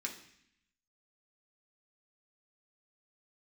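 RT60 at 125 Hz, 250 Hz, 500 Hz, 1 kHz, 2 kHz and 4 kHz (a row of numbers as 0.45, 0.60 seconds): 0.95, 0.95, 0.65, 0.70, 0.90, 0.85 seconds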